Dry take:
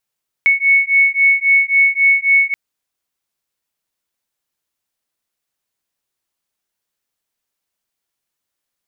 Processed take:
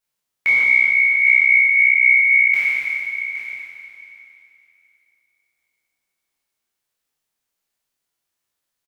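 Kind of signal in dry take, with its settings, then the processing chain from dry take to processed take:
beating tones 2210 Hz, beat 3.7 Hz, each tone -13 dBFS 2.08 s
spectral trails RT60 2.96 s; echo 0.815 s -12 dB; detuned doubles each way 49 cents

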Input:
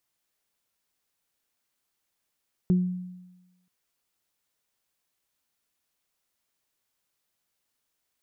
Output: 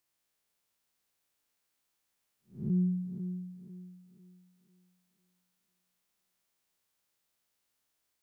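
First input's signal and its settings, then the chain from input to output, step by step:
additive tone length 0.98 s, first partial 181 Hz, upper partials -11 dB, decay 1.08 s, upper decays 0.32 s, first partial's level -16.5 dB
time blur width 0.199 s; on a send: thinning echo 0.497 s, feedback 41%, high-pass 160 Hz, level -8 dB

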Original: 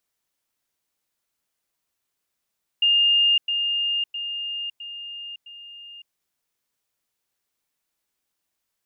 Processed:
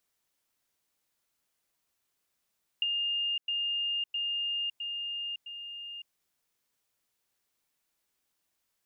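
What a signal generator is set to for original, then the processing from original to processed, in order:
level ladder 2820 Hz -15 dBFS, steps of -6 dB, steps 5, 0.56 s 0.10 s
compressor 10:1, threshold -30 dBFS

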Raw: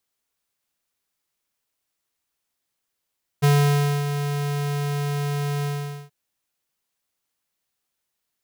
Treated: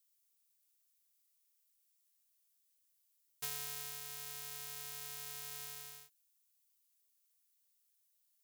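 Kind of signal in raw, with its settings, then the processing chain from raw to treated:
ADSR square 144 Hz, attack 21 ms, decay 0.593 s, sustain -9.5 dB, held 2.22 s, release 0.459 s -15.5 dBFS
differentiator; compressor 2:1, threshold -42 dBFS

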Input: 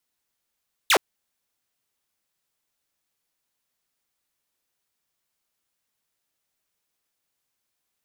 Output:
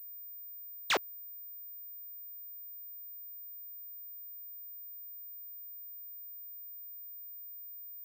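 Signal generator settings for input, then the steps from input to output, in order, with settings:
laser zap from 4200 Hz, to 310 Hz, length 0.07 s saw, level -12 dB
bell 75 Hz -11.5 dB 0.45 oct; limiter -21.5 dBFS; pulse-width modulation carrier 15000 Hz

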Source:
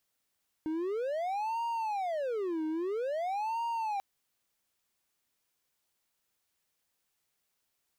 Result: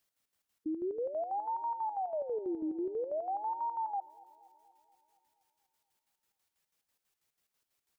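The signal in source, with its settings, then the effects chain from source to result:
siren wail 312–933 Hz 0.5/s triangle -28.5 dBFS 3.34 s
spectral gate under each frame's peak -15 dB strong; chopper 6.1 Hz, depth 60%, duty 55%; darkening echo 0.238 s, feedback 60%, low-pass 4500 Hz, level -21.5 dB

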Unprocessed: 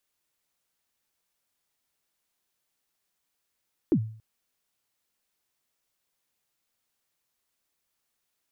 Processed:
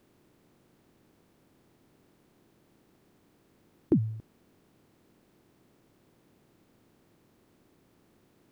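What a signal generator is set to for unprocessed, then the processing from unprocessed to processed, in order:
kick drum length 0.28 s, from 380 Hz, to 110 Hz, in 71 ms, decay 0.49 s, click off, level -15.5 dB
per-bin compression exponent 0.6

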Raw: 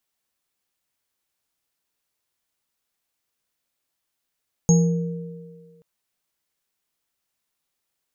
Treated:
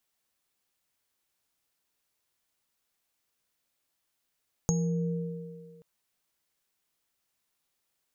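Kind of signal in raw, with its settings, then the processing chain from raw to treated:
sine partials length 1.13 s, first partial 169 Hz, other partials 467/825/6560 Hz, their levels -11/-20/-7.5 dB, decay 1.55 s, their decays 2.14/0.42/0.40 s, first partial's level -11 dB
compressor 6:1, threshold -26 dBFS

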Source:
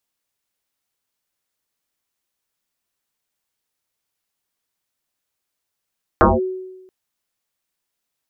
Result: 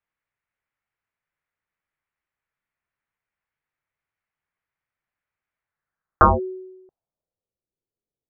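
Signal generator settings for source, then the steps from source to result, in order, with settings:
FM tone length 0.68 s, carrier 373 Hz, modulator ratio 0.38, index 7.9, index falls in 0.19 s linear, decay 1.05 s, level -6.5 dB
EQ curve 150 Hz 0 dB, 240 Hz -8 dB, 1400 Hz -3 dB, 2800 Hz -10 dB; low-pass sweep 2200 Hz -> 420 Hz, 5.57–7.61

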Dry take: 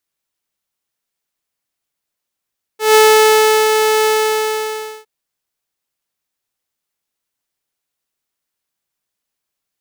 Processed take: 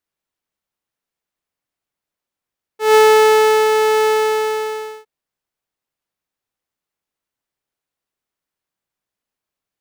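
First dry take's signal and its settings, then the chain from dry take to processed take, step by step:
ADSR saw 434 Hz, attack 0.155 s, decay 0.738 s, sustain -5.5 dB, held 1.27 s, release 0.991 s -3 dBFS
high shelf 2800 Hz -9 dB

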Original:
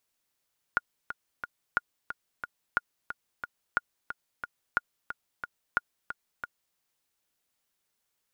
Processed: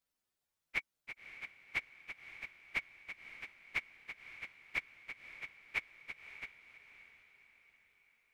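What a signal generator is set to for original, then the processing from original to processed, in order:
metronome 180 bpm, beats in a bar 3, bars 6, 1430 Hz, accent 10.5 dB -11 dBFS
inharmonic rescaling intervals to 126%; on a send: diffused feedback echo 0.569 s, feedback 49%, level -12 dB

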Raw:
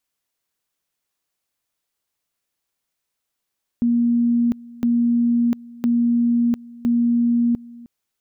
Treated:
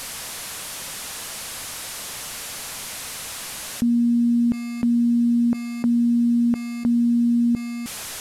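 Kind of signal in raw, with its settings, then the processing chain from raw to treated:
two-level tone 237 Hz -14.5 dBFS, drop 22 dB, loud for 0.70 s, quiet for 0.31 s, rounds 4
delta modulation 64 kbps, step -41 dBFS; bell 350 Hz -6 dB 0.4 oct; fast leveller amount 50%

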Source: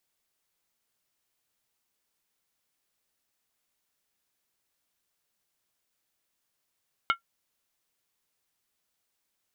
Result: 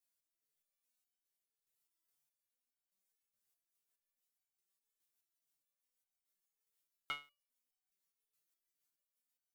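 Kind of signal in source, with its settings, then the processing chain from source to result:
skin hit, lowest mode 1370 Hz, decay 0.11 s, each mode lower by 4.5 dB, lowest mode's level -17 dB
high shelf 7000 Hz +11 dB; rotary speaker horn 0.85 Hz, later 6.3 Hz, at 2.97; stepped resonator 4.8 Hz 110–760 Hz

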